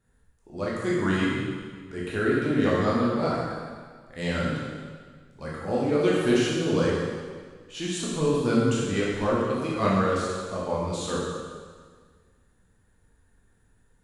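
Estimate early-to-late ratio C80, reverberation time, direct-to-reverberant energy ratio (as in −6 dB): 1.0 dB, 1.7 s, −6.5 dB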